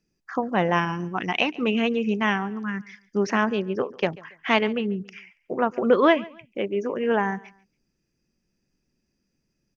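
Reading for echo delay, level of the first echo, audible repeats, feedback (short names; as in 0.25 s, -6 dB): 0.14 s, -22.0 dB, 2, 29%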